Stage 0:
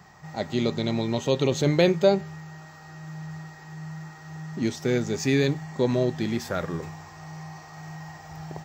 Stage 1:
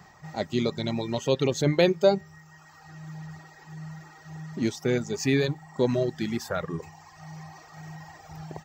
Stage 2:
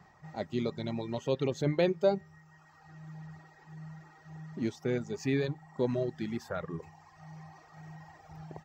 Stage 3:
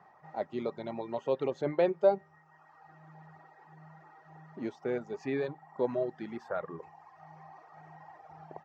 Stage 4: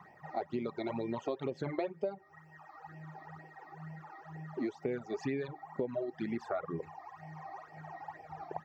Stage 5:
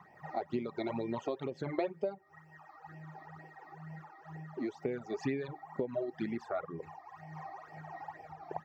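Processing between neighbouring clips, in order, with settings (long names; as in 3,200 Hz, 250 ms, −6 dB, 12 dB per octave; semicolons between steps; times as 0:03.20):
reverb reduction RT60 1.2 s
high-shelf EQ 3,700 Hz −10 dB; level −6 dB
resonant band-pass 790 Hz, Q 0.95; level +4 dB
all-pass phaser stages 12, 2.1 Hz, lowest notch 150–1,300 Hz; downward compressor 16 to 1, threshold −40 dBFS, peak gain reduction 18 dB; level +8.5 dB
amplitude modulation by smooth noise, depth 60%; level +2.5 dB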